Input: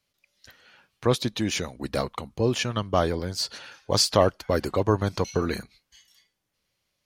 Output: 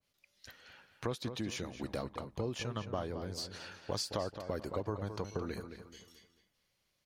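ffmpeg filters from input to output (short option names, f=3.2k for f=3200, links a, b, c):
-filter_complex "[0:a]acompressor=threshold=-35dB:ratio=3,asplit=2[a][b];[b]adelay=218,lowpass=f=3.6k:p=1,volume=-9dB,asplit=2[c][d];[d]adelay=218,lowpass=f=3.6k:p=1,volume=0.37,asplit=2[e][f];[f]adelay=218,lowpass=f=3.6k:p=1,volume=0.37,asplit=2[g][h];[h]adelay=218,lowpass=f=3.6k:p=1,volume=0.37[i];[c][e][g][i]amix=inputs=4:normalize=0[j];[a][j]amix=inputs=2:normalize=0,adynamicequalizer=threshold=0.00355:dfrequency=1500:dqfactor=0.7:tfrequency=1500:tqfactor=0.7:attack=5:release=100:ratio=0.375:range=2:mode=cutabove:tftype=highshelf,volume=-2.5dB"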